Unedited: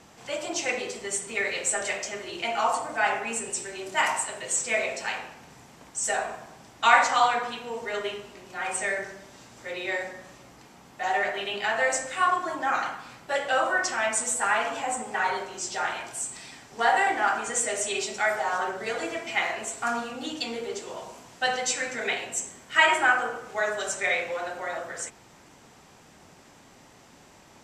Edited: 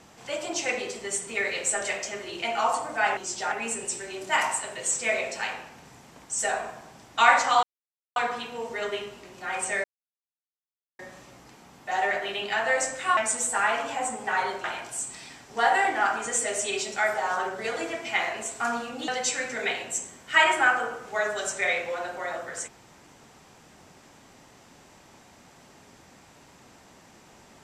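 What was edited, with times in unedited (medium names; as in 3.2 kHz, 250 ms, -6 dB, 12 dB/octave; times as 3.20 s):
7.28 s: insert silence 0.53 s
8.96–10.11 s: mute
12.29–14.04 s: delete
15.51–15.86 s: move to 3.17 s
20.30–21.50 s: delete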